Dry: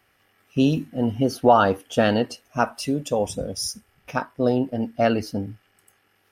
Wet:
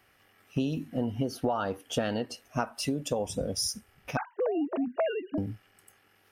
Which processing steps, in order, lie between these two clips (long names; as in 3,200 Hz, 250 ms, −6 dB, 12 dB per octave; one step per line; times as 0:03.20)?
0:04.17–0:05.38: three sine waves on the formant tracks
downward compressor 8 to 1, threshold −26 dBFS, peak gain reduction 16 dB